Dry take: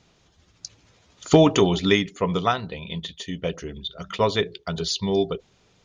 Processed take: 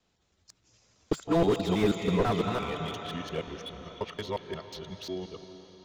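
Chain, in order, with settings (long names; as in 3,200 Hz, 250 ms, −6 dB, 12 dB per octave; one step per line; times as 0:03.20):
reversed piece by piece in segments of 169 ms
source passing by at 0:02.32, 21 m/s, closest 11 metres
parametric band 150 Hz −7 dB 0.23 octaves
on a send at −10 dB: convolution reverb RT60 4.5 s, pre-delay 132 ms
on the sum: slew-rate limiting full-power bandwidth 48 Hz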